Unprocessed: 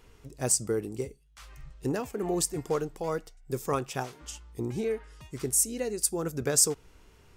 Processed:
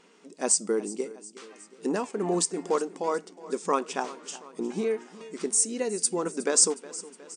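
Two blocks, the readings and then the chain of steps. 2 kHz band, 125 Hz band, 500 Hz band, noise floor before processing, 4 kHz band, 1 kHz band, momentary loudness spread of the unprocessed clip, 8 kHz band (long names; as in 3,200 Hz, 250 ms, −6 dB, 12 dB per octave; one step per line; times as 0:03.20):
+3.0 dB, −8.0 dB, +2.5 dB, −58 dBFS, +2.5 dB, +5.0 dB, 13 LU, +2.0 dB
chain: brick-wall band-pass 170–9,600 Hz
dynamic equaliser 1,000 Hz, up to +7 dB, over −53 dBFS, Q 5.3
repeating echo 364 ms, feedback 57%, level −18 dB
level +2.5 dB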